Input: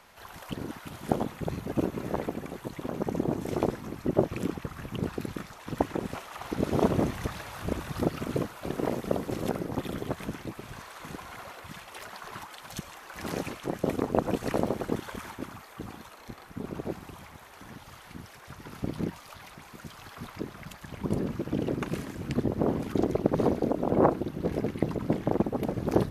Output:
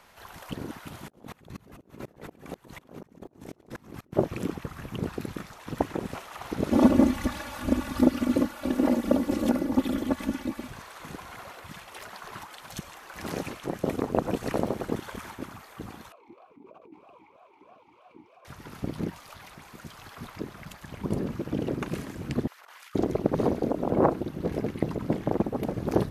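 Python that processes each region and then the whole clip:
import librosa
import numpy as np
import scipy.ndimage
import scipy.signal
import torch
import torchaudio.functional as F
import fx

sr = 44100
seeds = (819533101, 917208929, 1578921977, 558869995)

y = fx.chain(x, sr, fx.over_compress(threshold_db=-38.0, ratio=-1.0),
    fx.tremolo_decay(direction='swelling', hz=4.1, depth_db=28), at=(1.08, 4.13))
y = fx.chain(y, sr, fx.peak_eq(hz=250.0, db=9.0, octaves=0.35),
    fx.comb(ms=3.5, depth=0.94), at=(6.71, 10.68))
y = fx.chain(y, sr, fx.peak_eq(hz=530.0, db=4.0, octaves=1.8),
    fx.over_compress(threshold_db=-38.0, ratio=-1.0),
    fx.vowel_sweep(vowels='a-u', hz=3.1), at=(16.12, 18.45))
y = fx.chain(y, sr, fx.highpass(hz=1300.0, slope=24),
    fx.over_compress(threshold_db=-50.0, ratio=-0.5), at=(22.47, 22.95))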